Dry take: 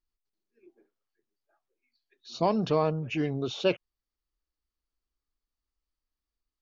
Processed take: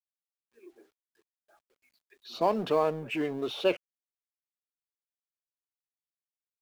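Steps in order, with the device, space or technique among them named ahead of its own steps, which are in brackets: phone line with mismatched companding (band-pass 300–3300 Hz; companding laws mixed up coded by mu)

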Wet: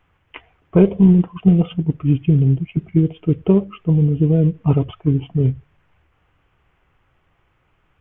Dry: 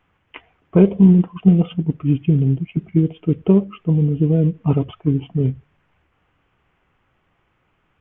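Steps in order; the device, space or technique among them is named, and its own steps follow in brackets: low shelf boost with a cut just above (bass shelf 110 Hz +6.5 dB; peaking EQ 220 Hz -4.5 dB 0.8 oct); trim +1 dB

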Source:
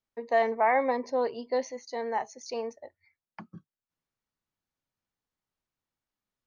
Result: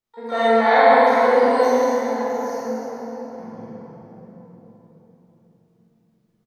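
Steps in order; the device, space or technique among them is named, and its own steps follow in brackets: 1.85–3.45 s: FFT filter 230 Hz 0 dB, 370 Hz -11 dB, 750 Hz -8 dB, 3.3 kHz -24 dB, 5.3 kHz -6 dB; shimmer-style reverb (harmony voices +12 st -10 dB; reverberation RT60 4.6 s, pre-delay 23 ms, DRR -9.5 dB); doubling 45 ms -2.5 dB; trim -1 dB

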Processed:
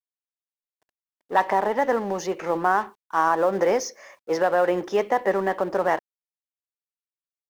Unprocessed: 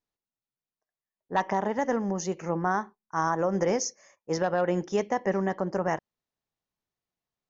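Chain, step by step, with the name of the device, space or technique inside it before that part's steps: phone line with mismatched companding (band-pass 370–3500 Hz; companding laws mixed up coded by mu); trim +6 dB

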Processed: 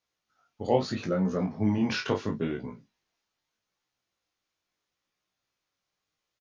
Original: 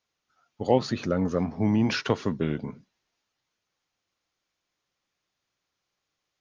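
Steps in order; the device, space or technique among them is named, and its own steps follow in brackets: double-tracked vocal (doubling 32 ms -9.5 dB; chorus 0.77 Hz, delay 16 ms, depth 5.8 ms)

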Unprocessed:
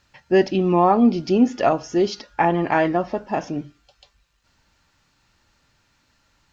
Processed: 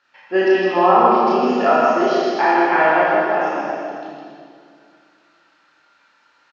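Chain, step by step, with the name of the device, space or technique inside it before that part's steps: station announcement (band-pass 440–3900 Hz; peaking EQ 1.4 kHz +7.5 dB 0.52 oct; loudspeakers at several distances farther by 11 m -1 dB, 54 m -3 dB, 95 m -9 dB; reverberation RT60 2.3 s, pre-delay 17 ms, DRR -4.5 dB); trim -3 dB

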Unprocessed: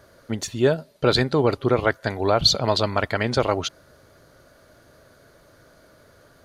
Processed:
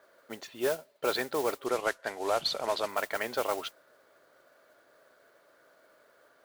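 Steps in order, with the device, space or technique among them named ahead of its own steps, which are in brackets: carbon microphone (band-pass 460–3100 Hz; saturation -11 dBFS, distortion -20 dB; modulation noise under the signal 13 dB); 1.66–2.89 s: low-pass 10 kHz 12 dB/octave; trim -6 dB

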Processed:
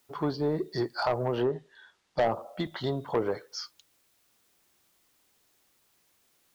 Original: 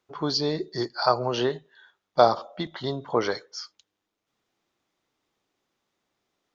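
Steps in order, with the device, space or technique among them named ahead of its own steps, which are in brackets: low-pass that closes with the level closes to 730 Hz, closed at -20 dBFS; open-reel tape (saturation -19 dBFS, distortion -9 dB; peaking EQ 92 Hz +4 dB; white noise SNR 36 dB); 1.42–2.21 s: low-pass 5.8 kHz 12 dB/octave

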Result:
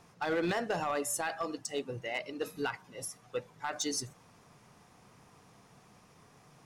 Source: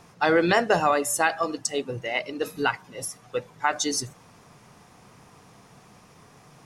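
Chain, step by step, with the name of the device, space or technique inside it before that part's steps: limiter into clipper (peak limiter -14.5 dBFS, peak gain reduction 6 dB; hard clipper -18.5 dBFS, distortion -19 dB); trim -7.5 dB

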